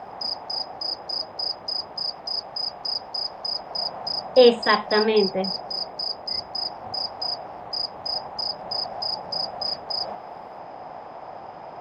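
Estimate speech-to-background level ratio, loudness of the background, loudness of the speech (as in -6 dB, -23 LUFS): 8.0 dB, -27.5 LUFS, -19.5 LUFS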